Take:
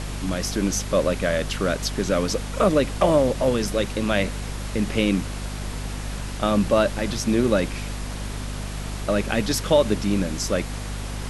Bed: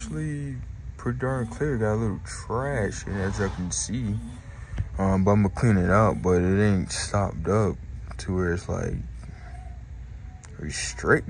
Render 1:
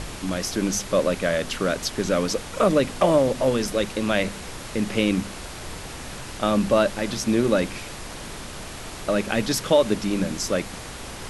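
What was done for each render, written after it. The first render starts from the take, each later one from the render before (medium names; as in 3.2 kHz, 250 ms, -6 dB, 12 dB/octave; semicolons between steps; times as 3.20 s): de-hum 50 Hz, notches 5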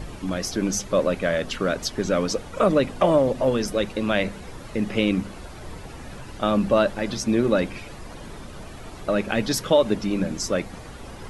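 noise reduction 11 dB, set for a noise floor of -37 dBFS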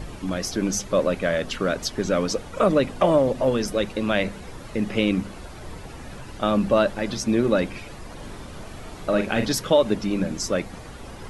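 8.14–9.52 s: doubling 42 ms -6.5 dB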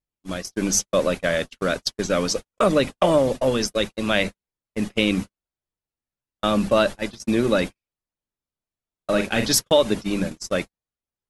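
gate -25 dBFS, range -58 dB; treble shelf 2.7 kHz +9.5 dB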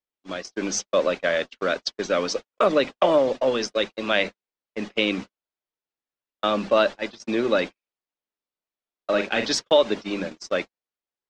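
low-pass 7.6 kHz 24 dB/octave; three-band isolator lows -16 dB, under 260 Hz, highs -15 dB, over 5.7 kHz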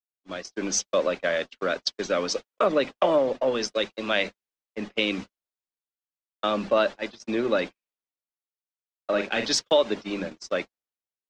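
compression 1.5:1, threshold -25 dBFS, peak gain reduction 5 dB; three bands expanded up and down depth 40%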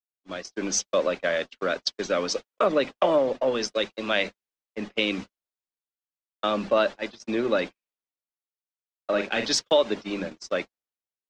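no audible change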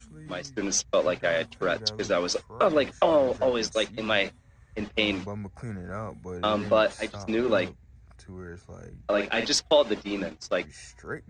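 add bed -16 dB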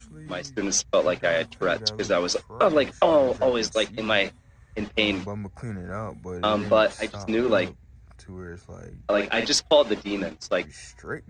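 trim +2.5 dB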